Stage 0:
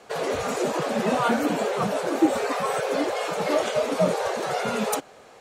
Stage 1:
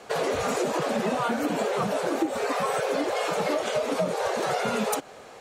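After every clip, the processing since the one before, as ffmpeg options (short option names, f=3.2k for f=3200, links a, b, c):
-af "acompressor=threshold=-26dB:ratio=10,volume=3.5dB"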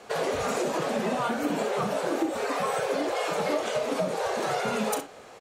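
-af "aecho=1:1:37|65:0.282|0.251,volume=-2dB"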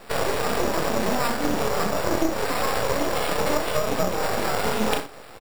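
-filter_complex "[0:a]asplit=2[a][b];[b]adelay=28,volume=-7dB[c];[a][c]amix=inputs=2:normalize=0,acrusher=samples=7:mix=1:aa=0.000001,aeval=exprs='max(val(0),0)':c=same,volume=7dB"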